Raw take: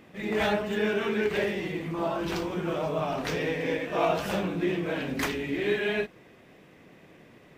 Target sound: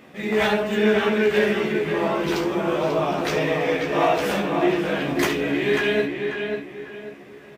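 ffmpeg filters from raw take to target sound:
-filter_complex "[0:a]asplit=2[s0][s1];[s1]aecho=0:1:14|71:0.596|0.251[s2];[s0][s2]amix=inputs=2:normalize=0,acontrast=78,lowshelf=f=110:g=-10,asplit=2[s3][s4];[s4]adelay=541,lowpass=f=3100:p=1,volume=0.562,asplit=2[s5][s6];[s6]adelay=541,lowpass=f=3100:p=1,volume=0.34,asplit=2[s7][s8];[s8]adelay=541,lowpass=f=3100:p=1,volume=0.34,asplit=2[s9][s10];[s10]adelay=541,lowpass=f=3100:p=1,volume=0.34[s11];[s5][s7][s9][s11]amix=inputs=4:normalize=0[s12];[s3][s12]amix=inputs=2:normalize=0,volume=0.794"

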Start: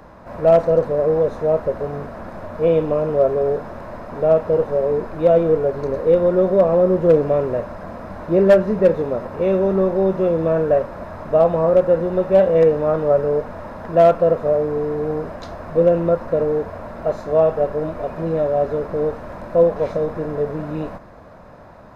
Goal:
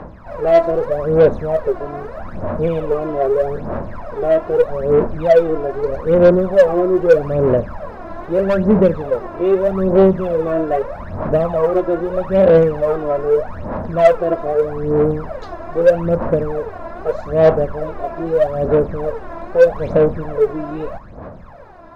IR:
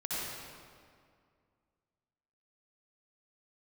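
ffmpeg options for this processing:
-filter_complex "[0:a]aemphasis=mode=reproduction:type=50kf,aphaser=in_gain=1:out_gain=1:delay=3:decay=0.75:speed=0.8:type=sinusoidal,asplit=2[s0][s1];[s1]acontrast=79,volume=0.794[s2];[s0][s2]amix=inputs=2:normalize=0,volume=0.355"

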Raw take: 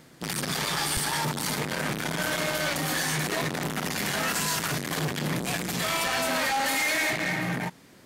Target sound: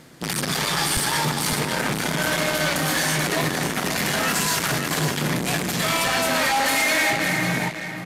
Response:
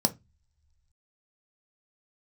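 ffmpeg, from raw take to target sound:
-filter_complex "[0:a]asplit=2[s0][s1];[s1]aecho=0:1:554:0.398[s2];[s0][s2]amix=inputs=2:normalize=0,aresample=32000,aresample=44100,volume=1.78"

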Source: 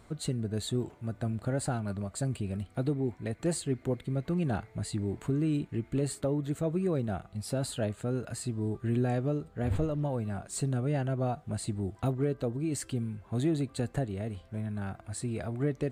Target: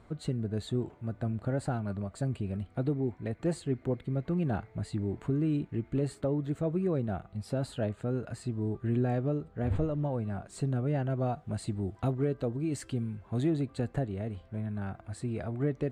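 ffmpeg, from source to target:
-af "asetnsamples=n=441:p=0,asendcmd='11.1 lowpass f 3900;13.5 lowpass f 2400',lowpass=f=2100:p=1"

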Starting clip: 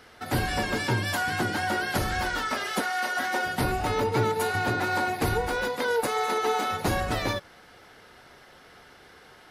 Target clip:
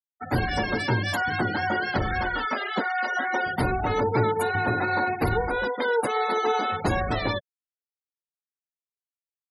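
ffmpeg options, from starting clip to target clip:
-filter_complex "[0:a]asettb=1/sr,asplit=3[s0][s1][s2];[s0]atrim=end=1.954[s3];[s1]atrim=start=1.95:end=2.85,asetpts=PTS-STARTPTS,afade=t=in:d=0.004:c=qsin,afade=t=out:st=0.896:d=0.004:c=qsin,lowpass=6000[s4];[s2]atrim=start=2.846[s5];[s3][s4]acrossfade=d=0.004:c1=hsin:c2=qsin[s6];[s6][s5]acrossfade=d=0.004:c1=qsin:c2=hsin,afftfilt=real='re*gte(hypot(re,im),0.0355)':imag='im*gte(hypot(re,im),0.0355)':win_size=1024:overlap=0.75,volume=1.26"

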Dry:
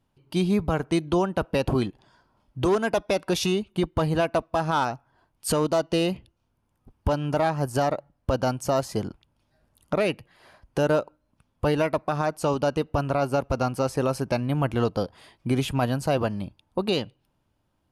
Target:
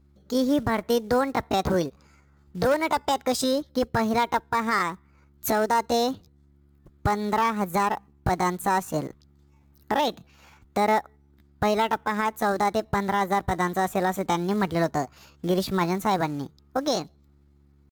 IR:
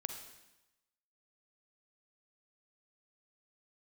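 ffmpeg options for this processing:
-af "acrusher=bits=6:mode=log:mix=0:aa=0.000001,aeval=exprs='val(0)+0.00141*(sin(2*PI*50*n/s)+sin(2*PI*2*50*n/s)/2+sin(2*PI*3*50*n/s)/3+sin(2*PI*4*50*n/s)/4+sin(2*PI*5*50*n/s)/5)':c=same,asetrate=62367,aresample=44100,atempo=0.707107"

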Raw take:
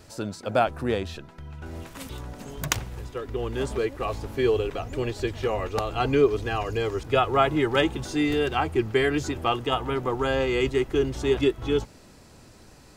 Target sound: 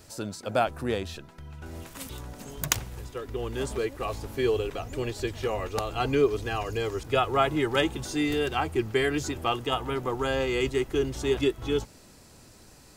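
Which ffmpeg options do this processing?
-af "highshelf=f=5700:g=8.5,volume=0.708"

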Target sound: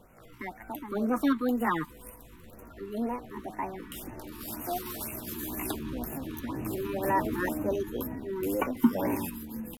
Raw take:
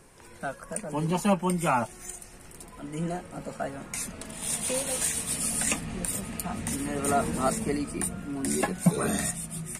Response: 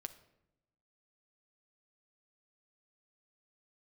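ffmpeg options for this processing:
-af "asetrate=60591,aresample=44100,atempo=0.727827,highshelf=f=2500:g=-10.5,afftfilt=real='re*(1-between(b*sr/1024,590*pow(4200/590,0.5+0.5*sin(2*PI*2*pts/sr))/1.41,590*pow(4200/590,0.5+0.5*sin(2*PI*2*pts/sr))*1.41))':imag='im*(1-between(b*sr/1024,590*pow(4200/590,0.5+0.5*sin(2*PI*2*pts/sr))/1.41,590*pow(4200/590,0.5+0.5*sin(2*PI*2*pts/sr))*1.41))':win_size=1024:overlap=0.75"

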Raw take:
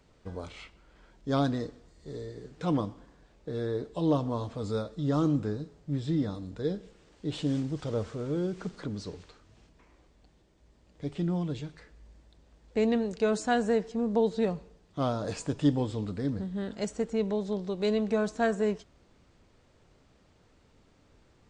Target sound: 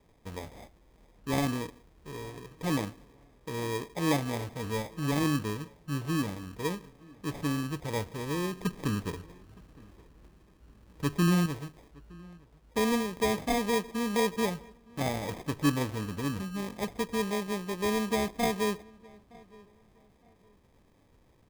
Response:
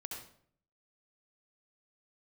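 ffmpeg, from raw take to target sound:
-filter_complex "[0:a]asettb=1/sr,asplit=3[s0][s1][s2];[s0]atrim=end=8.624[s3];[s1]atrim=start=8.62:end=11.46,asetpts=PTS-STARTPTS,afade=t=in:d=0.004:c=qsin,afade=t=out:st=2.836:d=0.004:c=qsin,tiltshelf=f=1100:g=7.5[s4];[s2]atrim=start=11.456[s5];[s3][s4]acrossfade=d=0.004:c1=hsin:c2=qsin[s6];[s6][s5]acrossfade=d=0.004:c1=qsin:c2=hsin,acrusher=samples=31:mix=1:aa=0.000001,asplit=2[s7][s8];[s8]adelay=915,lowpass=f=2500:p=1,volume=0.0631,asplit=2[s9][s10];[s10]adelay=915,lowpass=f=2500:p=1,volume=0.3[s11];[s9][s11]amix=inputs=2:normalize=0[s12];[s7][s12]amix=inputs=2:normalize=0,volume=0.841"

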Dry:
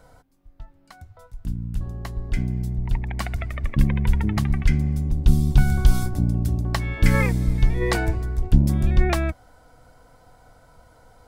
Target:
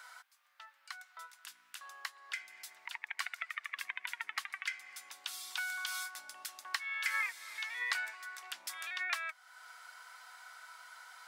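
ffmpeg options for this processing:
-af "highpass=f=1300:w=0.5412,highpass=f=1300:w=1.3066,highshelf=f=5700:g=-7.5,acompressor=threshold=0.00158:ratio=2,volume=3.35"

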